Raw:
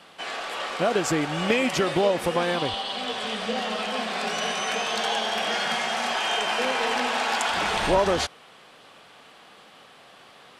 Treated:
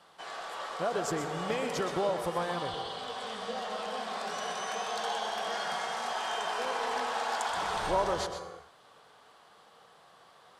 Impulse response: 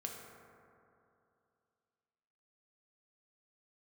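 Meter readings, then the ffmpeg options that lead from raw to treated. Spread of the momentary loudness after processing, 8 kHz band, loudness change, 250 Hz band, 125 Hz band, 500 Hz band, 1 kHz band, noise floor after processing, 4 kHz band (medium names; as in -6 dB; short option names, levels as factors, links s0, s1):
7 LU, -8.0 dB, -8.5 dB, -11.0 dB, -9.0 dB, -7.5 dB, -5.5 dB, -59 dBFS, -11.0 dB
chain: -filter_complex "[0:a]equalizer=f=250:t=o:w=0.67:g=-7,equalizer=f=1000:t=o:w=0.67:g=4,equalizer=f=2500:t=o:w=0.67:g=-8,asplit=2[s0][s1];[1:a]atrim=start_sample=2205,afade=t=out:st=0.36:d=0.01,atrim=end_sample=16317,adelay=125[s2];[s1][s2]afir=irnorm=-1:irlink=0,volume=0.562[s3];[s0][s3]amix=inputs=2:normalize=0,volume=0.376"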